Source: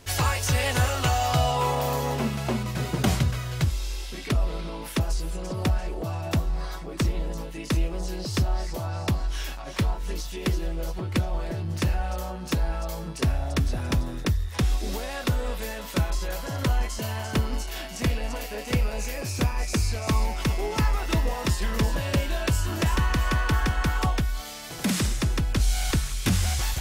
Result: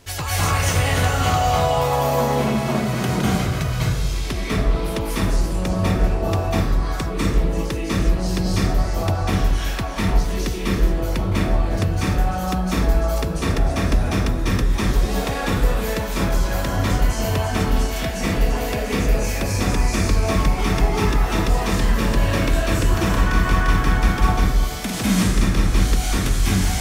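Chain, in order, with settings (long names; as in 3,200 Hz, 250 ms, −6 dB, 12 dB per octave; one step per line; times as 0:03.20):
downward compressor, threshold −23 dBFS, peak gain reduction 6 dB
convolution reverb RT60 1.2 s, pre-delay 190 ms, DRR −8 dB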